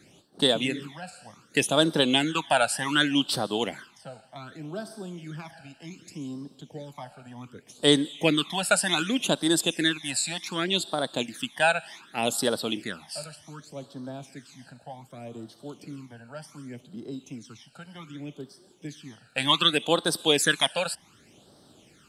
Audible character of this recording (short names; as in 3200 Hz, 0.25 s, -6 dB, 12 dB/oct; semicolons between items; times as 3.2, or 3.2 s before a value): phasing stages 12, 0.66 Hz, lowest notch 340–2400 Hz